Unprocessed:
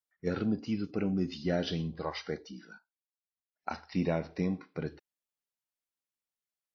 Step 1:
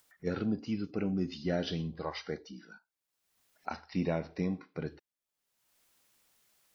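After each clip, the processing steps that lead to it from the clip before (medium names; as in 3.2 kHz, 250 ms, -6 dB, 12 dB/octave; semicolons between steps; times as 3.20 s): upward compressor, threshold -49 dBFS; trim -1.5 dB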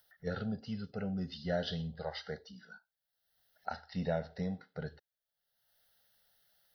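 static phaser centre 1.6 kHz, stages 8; trim +1 dB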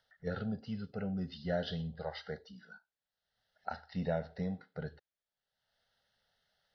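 distance through air 110 m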